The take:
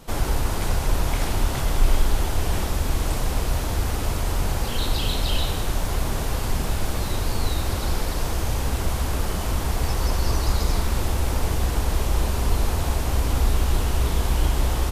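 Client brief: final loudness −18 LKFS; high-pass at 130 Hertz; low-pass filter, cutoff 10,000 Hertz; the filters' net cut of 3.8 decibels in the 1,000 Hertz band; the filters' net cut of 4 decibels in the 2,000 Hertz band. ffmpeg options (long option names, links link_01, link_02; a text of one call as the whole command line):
ffmpeg -i in.wav -af "highpass=130,lowpass=10000,equalizer=frequency=1000:width_type=o:gain=-4,equalizer=frequency=2000:width_type=o:gain=-4,volume=12.5dB" out.wav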